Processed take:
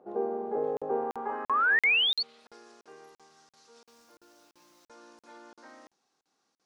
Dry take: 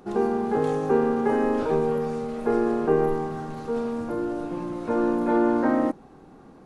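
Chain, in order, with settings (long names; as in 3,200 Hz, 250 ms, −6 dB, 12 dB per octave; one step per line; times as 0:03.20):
0:01.47–0:02.23: sound drawn into the spectrogram rise 1,000–4,600 Hz −21 dBFS
band-pass filter sweep 570 Hz → 5,600 Hz, 0:00.82–0:02.63
0:03.82–0:04.85: background noise white −70 dBFS
regular buffer underruns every 0.34 s, samples 2,048, zero, from 0:00.77
level −1.5 dB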